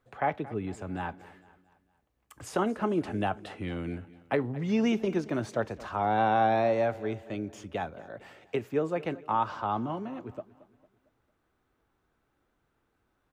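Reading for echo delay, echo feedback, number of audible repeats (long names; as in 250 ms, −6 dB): 226 ms, 47%, 3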